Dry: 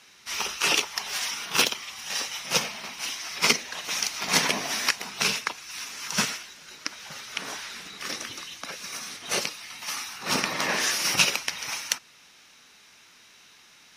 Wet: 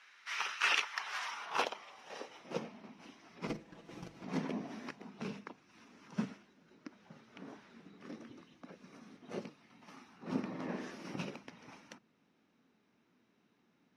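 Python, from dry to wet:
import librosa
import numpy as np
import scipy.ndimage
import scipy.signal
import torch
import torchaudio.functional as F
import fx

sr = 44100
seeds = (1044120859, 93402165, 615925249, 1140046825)

y = fx.lower_of_two(x, sr, delay_ms=6.0, at=(3.47, 4.24))
y = fx.hum_notches(y, sr, base_hz=50, count=4)
y = fx.filter_sweep_bandpass(y, sr, from_hz=1600.0, to_hz=230.0, start_s=0.89, end_s=2.83, q=1.6)
y = y * 10.0 ** (-1.0 / 20.0)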